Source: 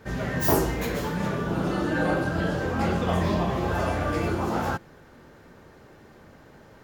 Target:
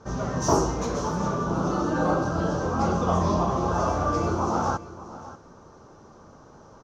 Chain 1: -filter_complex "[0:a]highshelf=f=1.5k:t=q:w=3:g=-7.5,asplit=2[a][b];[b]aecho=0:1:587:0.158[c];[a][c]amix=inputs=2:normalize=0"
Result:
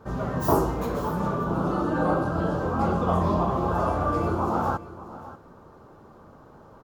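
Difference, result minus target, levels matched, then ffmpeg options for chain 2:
8000 Hz band -12.0 dB
-filter_complex "[0:a]lowpass=f=6k:t=q:w=8,highshelf=f=1.5k:t=q:w=3:g=-7.5,asplit=2[a][b];[b]aecho=0:1:587:0.158[c];[a][c]amix=inputs=2:normalize=0"

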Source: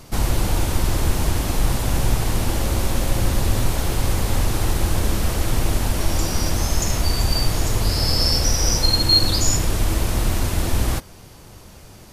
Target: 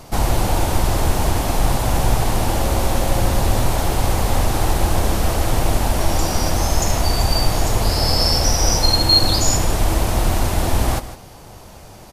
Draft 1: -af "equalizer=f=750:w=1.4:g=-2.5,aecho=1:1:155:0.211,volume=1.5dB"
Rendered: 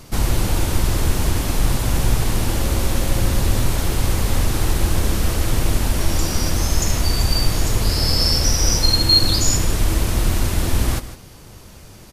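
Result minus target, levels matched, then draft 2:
1000 Hz band -6.5 dB
-af "equalizer=f=750:w=1.4:g=7.5,aecho=1:1:155:0.211,volume=1.5dB"

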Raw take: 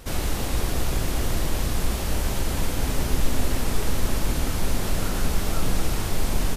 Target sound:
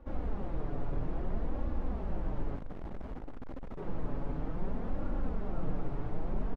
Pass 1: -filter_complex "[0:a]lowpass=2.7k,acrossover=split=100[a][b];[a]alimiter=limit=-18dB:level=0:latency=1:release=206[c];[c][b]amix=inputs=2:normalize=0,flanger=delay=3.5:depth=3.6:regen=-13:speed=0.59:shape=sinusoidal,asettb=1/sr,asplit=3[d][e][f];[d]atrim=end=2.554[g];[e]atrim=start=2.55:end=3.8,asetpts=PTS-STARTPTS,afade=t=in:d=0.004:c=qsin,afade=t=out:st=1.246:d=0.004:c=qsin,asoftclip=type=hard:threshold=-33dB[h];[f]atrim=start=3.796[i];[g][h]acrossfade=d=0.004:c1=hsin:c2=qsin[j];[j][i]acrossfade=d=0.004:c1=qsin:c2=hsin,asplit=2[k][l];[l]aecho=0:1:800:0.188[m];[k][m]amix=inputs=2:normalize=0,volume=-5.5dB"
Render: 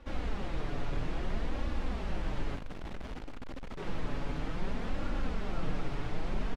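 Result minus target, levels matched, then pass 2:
2000 Hz band +9.0 dB
-filter_complex "[0:a]lowpass=970,acrossover=split=100[a][b];[a]alimiter=limit=-18dB:level=0:latency=1:release=206[c];[c][b]amix=inputs=2:normalize=0,flanger=delay=3.5:depth=3.6:regen=-13:speed=0.59:shape=sinusoidal,asettb=1/sr,asplit=3[d][e][f];[d]atrim=end=2.554[g];[e]atrim=start=2.55:end=3.8,asetpts=PTS-STARTPTS,afade=t=in:d=0.004:c=qsin,afade=t=out:st=1.246:d=0.004:c=qsin,asoftclip=type=hard:threshold=-33dB[h];[f]atrim=start=3.796[i];[g][h]acrossfade=d=0.004:c1=hsin:c2=qsin[j];[j][i]acrossfade=d=0.004:c1=qsin:c2=hsin,asplit=2[k][l];[l]aecho=0:1:800:0.188[m];[k][m]amix=inputs=2:normalize=0,volume=-5.5dB"

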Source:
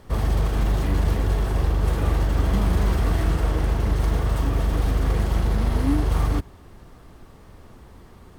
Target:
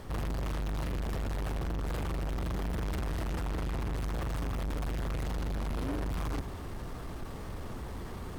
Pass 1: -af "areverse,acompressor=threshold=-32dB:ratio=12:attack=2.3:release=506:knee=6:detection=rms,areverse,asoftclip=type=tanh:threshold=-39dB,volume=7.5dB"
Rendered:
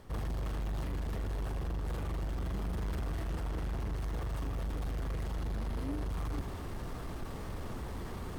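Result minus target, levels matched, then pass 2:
compressor: peak gain reduction +9.5 dB
-af "areverse,acompressor=threshold=-21.5dB:ratio=12:attack=2.3:release=506:knee=6:detection=rms,areverse,asoftclip=type=tanh:threshold=-39dB,volume=7.5dB"

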